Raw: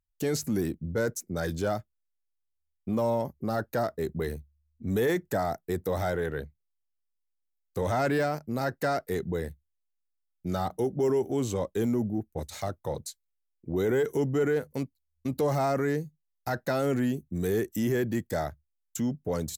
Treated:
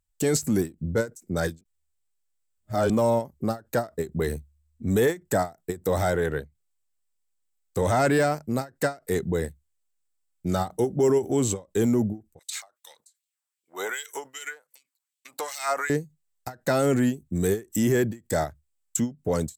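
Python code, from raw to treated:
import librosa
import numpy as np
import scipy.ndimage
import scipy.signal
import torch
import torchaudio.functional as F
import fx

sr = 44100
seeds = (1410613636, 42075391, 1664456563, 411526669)

y = fx.filter_lfo_highpass(x, sr, shape='sine', hz=2.6, low_hz=820.0, high_hz=3200.0, q=1.8, at=(12.39, 15.9))
y = fx.edit(y, sr, fx.reverse_span(start_s=1.61, length_s=1.29), tone=tone)
y = fx.peak_eq(y, sr, hz=7900.0, db=11.0, octaves=0.29)
y = fx.end_taper(y, sr, db_per_s=260.0)
y = y * 10.0 ** (5.0 / 20.0)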